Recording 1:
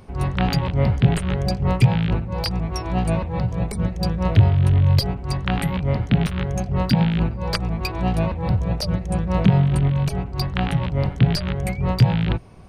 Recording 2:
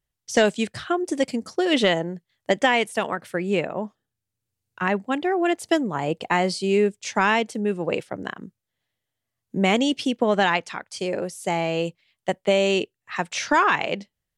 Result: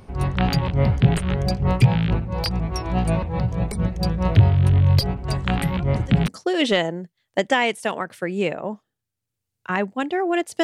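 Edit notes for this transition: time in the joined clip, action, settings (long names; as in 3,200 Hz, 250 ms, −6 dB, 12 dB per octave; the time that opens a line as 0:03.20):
recording 1
0:05.28: mix in recording 2 from 0:00.40 1.00 s −17.5 dB
0:06.28: continue with recording 2 from 0:01.40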